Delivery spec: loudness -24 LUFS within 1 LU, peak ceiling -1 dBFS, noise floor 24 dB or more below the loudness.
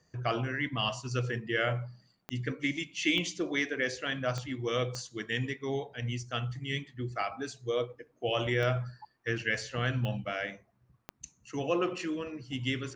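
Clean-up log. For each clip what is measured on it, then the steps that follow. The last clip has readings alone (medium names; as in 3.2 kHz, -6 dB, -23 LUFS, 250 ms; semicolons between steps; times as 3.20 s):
clicks found 7; loudness -33.0 LUFS; peak level -16.0 dBFS; loudness target -24.0 LUFS
-> de-click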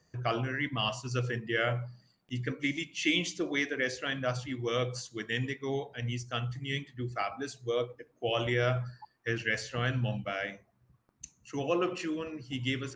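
clicks found 0; loudness -33.0 LUFS; peak level -16.0 dBFS; loudness target -24.0 LUFS
-> trim +9 dB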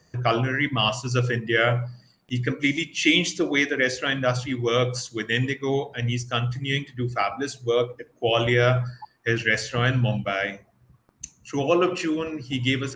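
loudness -24.0 LUFS; peak level -7.0 dBFS; noise floor -62 dBFS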